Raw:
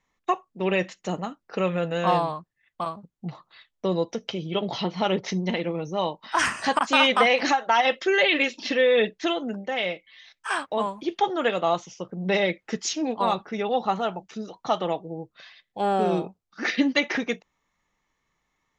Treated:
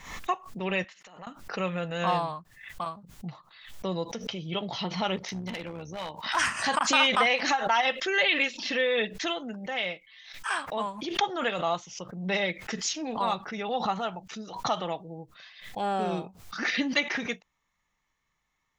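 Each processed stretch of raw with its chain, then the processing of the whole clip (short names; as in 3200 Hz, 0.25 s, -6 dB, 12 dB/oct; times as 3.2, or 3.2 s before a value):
0.84–1.27 band-pass 1700 Hz, Q 0.56 + compressor 12:1, threshold -43 dBFS
5.16–6.36 HPF 71 Hz 6 dB/oct + AM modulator 69 Hz, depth 35% + hard clip -25 dBFS
whole clip: bell 370 Hz -7 dB 1.8 oct; backwards sustainer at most 88 dB/s; gain -2 dB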